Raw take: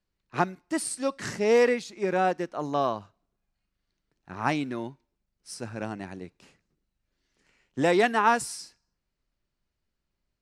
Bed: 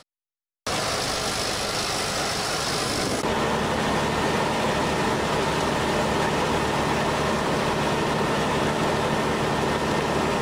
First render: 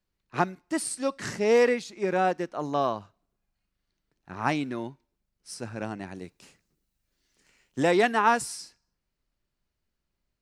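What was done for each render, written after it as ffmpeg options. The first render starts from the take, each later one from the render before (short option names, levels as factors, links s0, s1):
-filter_complex "[0:a]asettb=1/sr,asplit=3[s0][s1][s2];[s0]atrim=end=6.154[s3];[s1]atrim=start=6.15:end=7.83,asetpts=PTS-STARTPTS,afade=t=in:d=0.004:c=qsin,afade=t=out:st=1.676:d=0.004:c=qsin,highshelf=f=5500:g=11.5[s4];[s2]atrim=start=7.826[s5];[s3][s4]acrossfade=d=0.004:c1=hsin:c2=qsin[s6];[s6][s5]acrossfade=d=0.004:c1=qsin:c2=hsin"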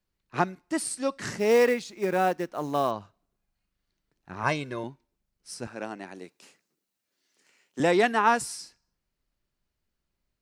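-filter_complex "[0:a]asettb=1/sr,asplit=3[s0][s1][s2];[s0]atrim=end=1.394[s3];[s1]atrim=start=1.39:end=2.91,asetpts=PTS-STARTPTS,afade=t=in:d=0.004:c=qsin,afade=t=out:st=1.516:d=0.004:c=qsin,acrusher=bits=6:mode=log:mix=0:aa=0.000001[s4];[s2]atrim=start=2.906[s5];[s3][s4]acrossfade=d=0.004:c1=hsin:c2=qsin[s6];[s6][s5]acrossfade=d=0.004:c1=qsin:c2=hsin,asettb=1/sr,asplit=3[s7][s8][s9];[s7]atrim=end=4.434[s10];[s8]atrim=start=4.43:end=4.84,asetpts=PTS-STARTPTS,afade=t=in:d=0.004:c=qsin,afade=t=out:st=0.406:d=0.004:c=qsin,aecho=1:1:1.9:0.65,atrim=end_sample=18081[s11];[s9]atrim=start=4.836[s12];[s10][s11]acrossfade=d=0.004:c1=hsin:c2=qsin[s13];[s13][s12]acrossfade=d=0.004:c1=qsin:c2=hsin,asettb=1/sr,asplit=3[s14][s15][s16];[s14]atrim=end=5.674[s17];[s15]atrim=start=5.67:end=7.8,asetpts=PTS-STARTPTS,afade=t=in:d=0.004:c=qsin,afade=t=out:st=2.126:d=0.004:c=qsin,highpass=270[s18];[s16]atrim=start=7.796[s19];[s17][s18]acrossfade=d=0.004:c1=hsin:c2=qsin[s20];[s20][s19]acrossfade=d=0.004:c1=qsin:c2=hsin"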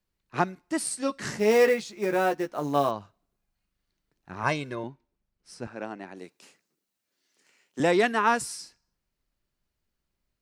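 -filter_complex "[0:a]asettb=1/sr,asplit=3[s0][s1][s2];[s0]atrim=end=0.794[s3];[s1]atrim=start=0.79:end=2.89,asetpts=PTS-STARTPTS,afade=t=in:d=0.004:c=qsin,afade=t=out:st=2.096:d=0.004:c=qsin,asplit=2[s4][s5];[s5]adelay=14,volume=0.501[s6];[s4][s6]amix=inputs=2:normalize=0,atrim=end_sample=92610[s7];[s2]atrim=start=2.886[s8];[s3][s7]acrossfade=d=0.004:c1=hsin:c2=qsin[s9];[s9][s8]acrossfade=d=0.004:c1=qsin:c2=hsin,asettb=1/sr,asplit=3[s10][s11][s12];[s10]atrim=end=4.754[s13];[s11]atrim=start=4.75:end=6.17,asetpts=PTS-STARTPTS,afade=t=in:d=0.004:c=qsin,afade=t=out:st=1.416:d=0.004:c=qsin,lowpass=f=2900:p=1[s14];[s12]atrim=start=6.166[s15];[s13][s14]acrossfade=d=0.004:c1=hsin:c2=qsin[s16];[s16][s15]acrossfade=d=0.004:c1=qsin:c2=hsin,asettb=1/sr,asplit=3[s17][s18][s19];[s17]atrim=end=7.964[s20];[s18]atrim=start=7.96:end=8.6,asetpts=PTS-STARTPTS,afade=t=in:d=0.004:c=qsin,afade=t=out:st=0.636:d=0.004:c=qsin,bandreject=f=800:w=5.1[s21];[s19]atrim=start=8.596[s22];[s20][s21]acrossfade=d=0.004:c1=hsin:c2=qsin[s23];[s23][s22]acrossfade=d=0.004:c1=qsin:c2=hsin"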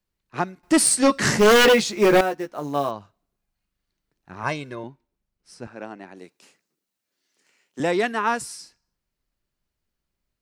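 -filter_complex "[0:a]asettb=1/sr,asplit=3[s0][s1][s2];[s0]atrim=end=0.634[s3];[s1]atrim=start=0.63:end=2.21,asetpts=PTS-STARTPTS,afade=t=in:d=0.004:c=qsin,afade=t=out:st=1.576:d=0.004:c=qsin,aeval=exprs='0.299*sin(PI/2*3.16*val(0)/0.299)':c=same[s4];[s2]atrim=start=2.206[s5];[s3][s4]acrossfade=d=0.004:c1=hsin:c2=qsin[s6];[s6][s5]acrossfade=d=0.004:c1=qsin:c2=hsin"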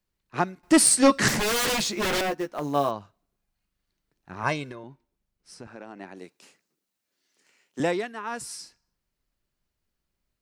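-filter_complex "[0:a]asettb=1/sr,asplit=3[s0][s1][s2];[s0]atrim=end=1.284[s3];[s1]atrim=start=1.28:end=2.66,asetpts=PTS-STARTPTS,afade=t=in:d=0.004:c=qsin,afade=t=out:st=1.376:d=0.004:c=qsin,aeval=exprs='0.0891*(abs(mod(val(0)/0.0891+3,4)-2)-1)':c=same[s4];[s2]atrim=start=2.656[s5];[s3][s4]acrossfade=d=0.004:c1=hsin:c2=qsin[s6];[s6][s5]acrossfade=d=0.004:c1=qsin:c2=hsin,asettb=1/sr,asplit=3[s7][s8][s9];[s7]atrim=end=4.714[s10];[s8]atrim=start=4.71:end=6,asetpts=PTS-STARTPTS,afade=t=in:d=0.004:c=qsin,afade=t=out:st=1.286:d=0.004:c=qsin,acompressor=threshold=0.0158:ratio=6:attack=3.2:release=140:knee=1:detection=peak[s11];[s9]atrim=start=5.996[s12];[s10][s11]acrossfade=d=0.004:c1=hsin:c2=qsin[s13];[s13][s12]acrossfade=d=0.004:c1=qsin:c2=hsin,asplit=3[s14][s15][s16];[s14]atrim=end=8.05,asetpts=PTS-STARTPTS,afade=t=out:st=7.8:d=0.25:silence=0.266073[s17];[s15]atrim=start=8.05:end=8.3,asetpts=PTS-STARTPTS,volume=0.266[s18];[s16]atrim=start=8.3,asetpts=PTS-STARTPTS,afade=t=in:d=0.25:silence=0.266073[s19];[s17][s18][s19]concat=n=3:v=0:a=1"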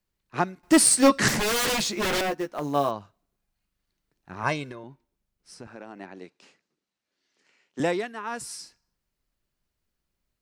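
-filter_complex "[0:a]asettb=1/sr,asplit=3[s0][s1][s2];[s0]atrim=end=0.614[s3];[s1]atrim=start=0.61:end=1.09,asetpts=PTS-STARTPTS,afade=t=in:d=0.004:c=qsin,afade=t=out:st=0.476:d=0.004:c=qsin,acrusher=bits=6:mode=log:mix=0:aa=0.000001[s4];[s2]atrim=start=1.086[s5];[s3][s4]acrossfade=d=0.004:c1=hsin:c2=qsin[s6];[s6][s5]acrossfade=d=0.004:c1=qsin:c2=hsin,asettb=1/sr,asplit=3[s7][s8][s9];[s7]atrim=end=6.064[s10];[s8]atrim=start=6.06:end=7.79,asetpts=PTS-STARTPTS,afade=t=in:d=0.004:c=qsin,afade=t=out:st=1.726:d=0.004:c=qsin,lowpass=5400[s11];[s9]atrim=start=7.786[s12];[s10][s11]acrossfade=d=0.004:c1=hsin:c2=qsin[s13];[s13][s12]acrossfade=d=0.004:c1=qsin:c2=hsin"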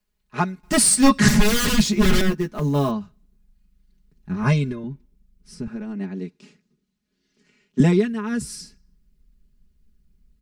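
-af "aecho=1:1:4.8:0.92,asubboost=boost=11:cutoff=220"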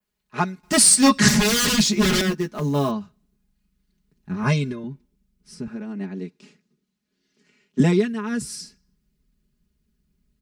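-af "adynamicequalizer=threshold=0.0158:dfrequency=5500:dqfactor=0.78:tfrequency=5500:tqfactor=0.78:attack=5:release=100:ratio=0.375:range=2.5:mode=boostabove:tftype=bell,highpass=f=120:p=1"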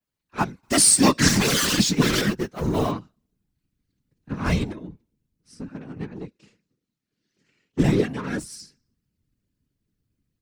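-filter_complex "[0:a]asplit=2[s0][s1];[s1]acrusher=bits=3:mix=0:aa=0.5,volume=0.631[s2];[s0][s2]amix=inputs=2:normalize=0,afftfilt=real='hypot(re,im)*cos(2*PI*random(0))':imag='hypot(re,im)*sin(2*PI*random(1))':win_size=512:overlap=0.75"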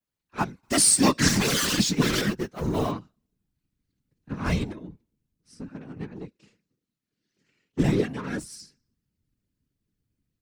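-af "volume=0.708"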